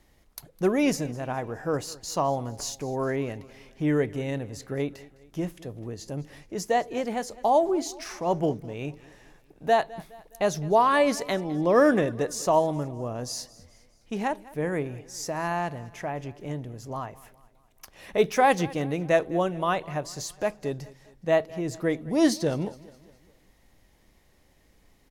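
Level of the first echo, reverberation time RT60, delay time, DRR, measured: -20.5 dB, none, 0.208 s, none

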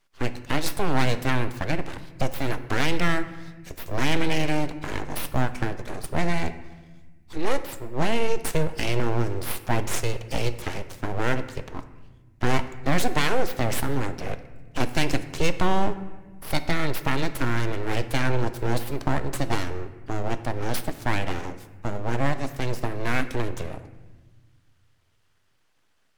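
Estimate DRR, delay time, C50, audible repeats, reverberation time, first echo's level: 10.0 dB, none, 13.0 dB, none, 1.3 s, none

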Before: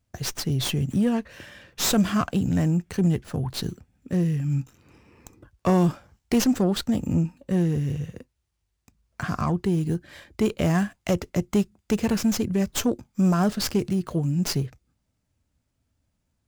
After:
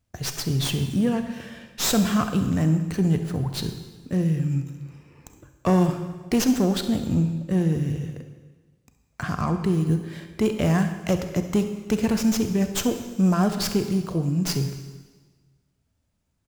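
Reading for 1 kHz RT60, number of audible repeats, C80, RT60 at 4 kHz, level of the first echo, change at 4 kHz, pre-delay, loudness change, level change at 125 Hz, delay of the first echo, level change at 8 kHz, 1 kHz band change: 1.4 s, 1, 10.0 dB, 1.3 s, -16.0 dB, +0.5 dB, 31 ms, +1.0 dB, +1.0 dB, 67 ms, +0.5 dB, +0.5 dB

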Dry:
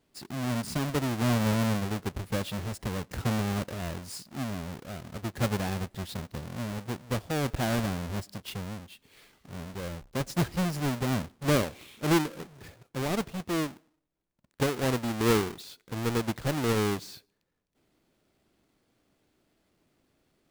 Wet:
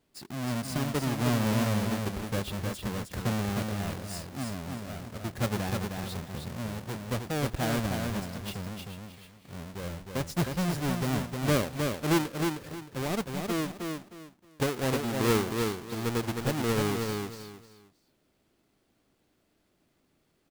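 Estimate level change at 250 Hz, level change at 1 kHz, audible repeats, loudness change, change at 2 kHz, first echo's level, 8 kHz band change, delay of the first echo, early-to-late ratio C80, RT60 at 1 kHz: 0.0 dB, 0.0 dB, 3, -0.5 dB, 0.0 dB, -4.5 dB, +0.5 dB, 0.311 s, none, none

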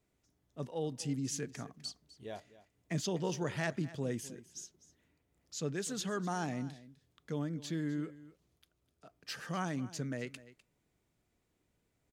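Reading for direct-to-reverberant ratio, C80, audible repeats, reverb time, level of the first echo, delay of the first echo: none, none, 1, none, -17.5 dB, 0.252 s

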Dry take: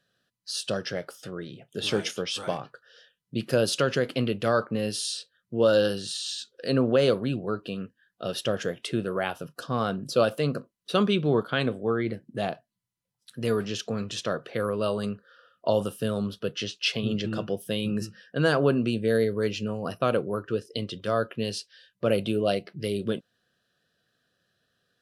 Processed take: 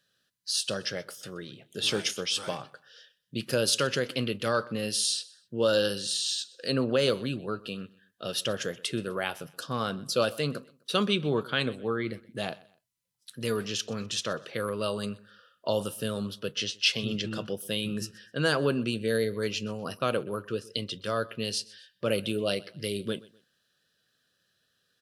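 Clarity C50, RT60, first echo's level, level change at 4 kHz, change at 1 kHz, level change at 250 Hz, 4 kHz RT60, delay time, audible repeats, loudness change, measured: none, none, -22.0 dB, +2.5 dB, -3.0 dB, -4.5 dB, none, 0.126 s, 2, -2.0 dB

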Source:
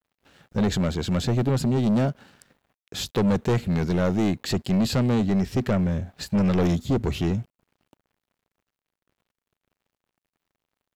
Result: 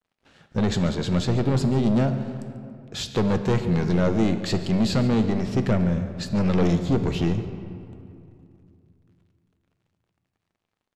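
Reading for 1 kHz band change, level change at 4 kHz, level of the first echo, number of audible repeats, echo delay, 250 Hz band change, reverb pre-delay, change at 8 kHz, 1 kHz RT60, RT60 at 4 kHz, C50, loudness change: +1.0 dB, +0.5 dB, -17.0 dB, 1, 0.141 s, +1.0 dB, 6 ms, -1.5 dB, 2.6 s, 1.4 s, 9.0 dB, +0.5 dB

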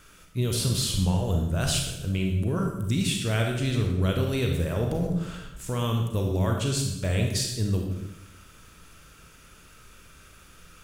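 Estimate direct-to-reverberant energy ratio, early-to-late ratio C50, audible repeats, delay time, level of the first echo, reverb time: 1.5 dB, 3.5 dB, none, none, none, 0.90 s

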